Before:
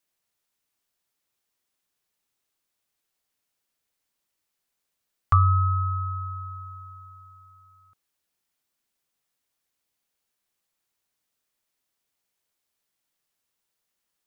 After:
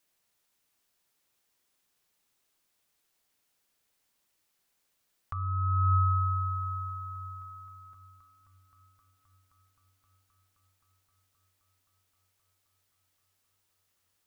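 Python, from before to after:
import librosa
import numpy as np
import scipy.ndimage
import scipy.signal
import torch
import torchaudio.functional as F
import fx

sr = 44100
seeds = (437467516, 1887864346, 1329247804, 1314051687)

y = fx.over_compress(x, sr, threshold_db=-27.0, ratio=-1.0)
y = fx.echo_heads(y, sr, ms=262, heads='second and third', feedback_pct=73, wet_db=-18.0)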